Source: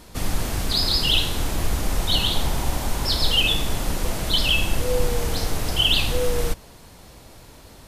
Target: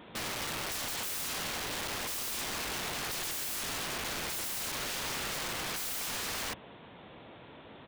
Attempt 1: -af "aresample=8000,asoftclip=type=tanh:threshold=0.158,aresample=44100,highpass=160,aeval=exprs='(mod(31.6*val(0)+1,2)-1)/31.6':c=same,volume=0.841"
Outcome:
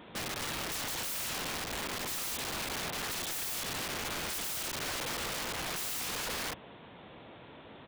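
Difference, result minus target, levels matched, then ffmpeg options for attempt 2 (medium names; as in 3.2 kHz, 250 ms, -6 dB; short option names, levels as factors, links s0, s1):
saturation: distortion +9 dB
-af "aresample=8000,asoftclip=type=tanh:threshold=0.335,aresample=44100,highpass=160,aeval=exprs='(mod(31.6*val(0)+1,2)-1)/31.6':c=same,volume=0.841"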